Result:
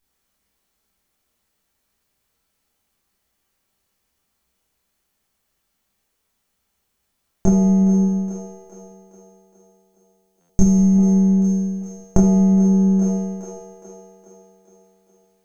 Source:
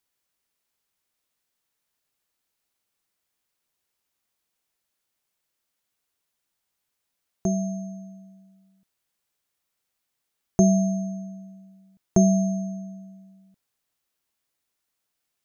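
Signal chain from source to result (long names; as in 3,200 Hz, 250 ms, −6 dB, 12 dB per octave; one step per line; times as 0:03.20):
gain on one half-wave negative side −12 dB
0:08.05–0:10.96: parametric band 710 Hz −14.5 dB 2.9 octaves
echo with a time of its own for lows and highs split 310 Hz, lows 166 ms, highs 415 ms, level −12 dB
convolution reverb RT60 0.40 s, pre-delay 17 ms, DRR −7 dB
downward compressor 12 to 1, threshold −19 dBFS, peak gain reduction 14.5 dB
low-shelf EQ 130 Hz +11 dB
buffer that repeats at 0:10.40, samples 512, times 7
level +4 dB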